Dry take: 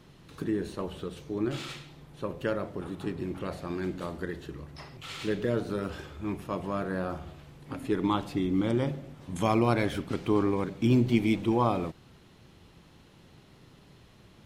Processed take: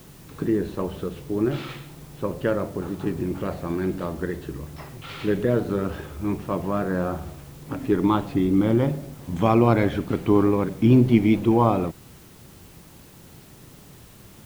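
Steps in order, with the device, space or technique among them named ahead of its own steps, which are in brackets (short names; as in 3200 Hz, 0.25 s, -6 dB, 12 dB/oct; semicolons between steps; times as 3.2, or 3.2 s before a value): cassette deck with a dirty head (tape spacing loss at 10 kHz 23 dB; wow and flutter; white noise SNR 29 dB); gain +8 dB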